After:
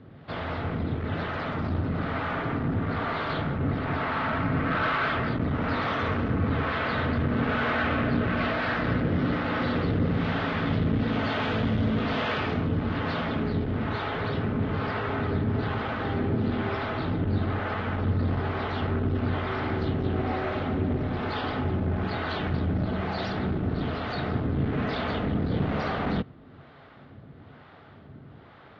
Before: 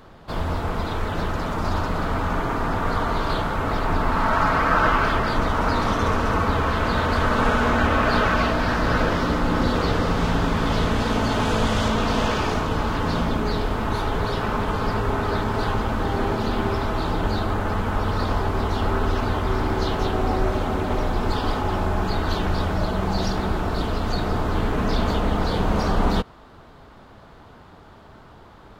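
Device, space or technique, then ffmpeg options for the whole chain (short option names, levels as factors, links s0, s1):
guitar amplifier with harmonic tremolo: -filter_complex "[0:a]acrossover=split=460[s0][s1];[s0]aeval=exprs='val(0)*(1-0.7/2+0.7/2*cos(2*PI*1.1*n/s))':c=same[s2];[s1]aeval=exprs='val(0)*(1-0.7/2-0.7/2*cos(2*PI*1.1*n/s))':c=same[s3];[s2][s3]amix=inputs=2:normalize=0,asoftclip=type=tanh:threshold=0.0944,highpass=81,equalizer=f=94:t=q:w=4:g=6,equalizer=f=140:t=q:w=4:g=9,equalizer=f=260:t=q:w=4:g=5,equalizer=f=960:t=q:w=4:g=-7,equalizer=f=2000:t=q:w=4:g=4,lowpass=f=3800:w=0.5412,lowpass=f=3800:w=1.3066"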